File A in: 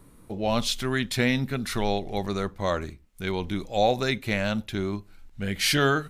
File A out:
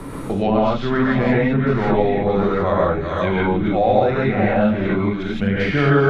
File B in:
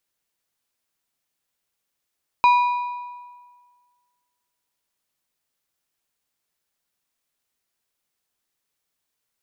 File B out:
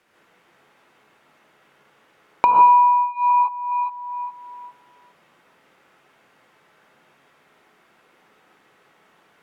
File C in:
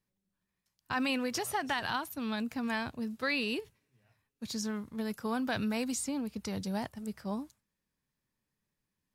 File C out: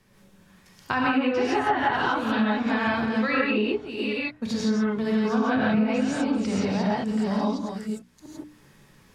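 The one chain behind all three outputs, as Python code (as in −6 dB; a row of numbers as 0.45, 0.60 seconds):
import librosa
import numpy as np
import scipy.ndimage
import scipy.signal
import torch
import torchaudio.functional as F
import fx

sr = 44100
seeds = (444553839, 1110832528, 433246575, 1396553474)

p1 = fx.reverse_delay(x, sr, ms=413, wet_db=-9.5)
p2 = 10.0 ** (-19.0 / 20.0) * np.tanh(p1 / 10.0 ** (-19.0 / 20.0))
p3 = p1 + (p2 * 10.0 ** (-8.5 / 20.0))
p4 = fx.high_shelf(p3, sr, hz=7100.0, db=-10.0)
p5 = fx.notch(p4, sr, hz=4100.0, q=27.0)
p6 = fx.rev_gated(p5, sr, seeds[0], gate_ms=190, shape='rising', drr_db=-7.0)
p7 = fx.env_lowpass_down(p6, sr, base_hz=1500.0, full_db=-16.0)
p8 = fx.hum_notches(p7, sr, base_hz=60, count=5)
y = fx.band_squash(p8, sr, depth_pct=70)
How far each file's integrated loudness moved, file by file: +8.5, +3.5, +10.0 LU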